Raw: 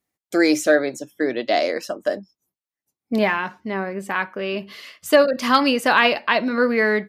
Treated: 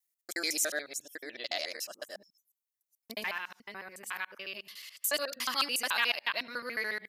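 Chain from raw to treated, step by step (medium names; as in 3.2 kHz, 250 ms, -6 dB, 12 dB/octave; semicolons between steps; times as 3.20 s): time reversed locally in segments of 72 ms; pre-emphasis filter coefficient 0.97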